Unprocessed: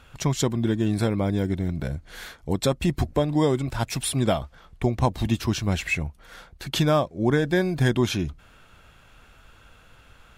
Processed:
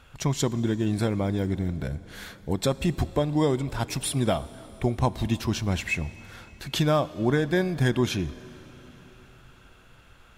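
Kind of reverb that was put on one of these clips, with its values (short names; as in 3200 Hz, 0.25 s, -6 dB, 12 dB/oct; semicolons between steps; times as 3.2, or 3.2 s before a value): plate-style reverb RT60 4.4 s, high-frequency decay 0.95×, DRR 16.5 dB; gain -2 dB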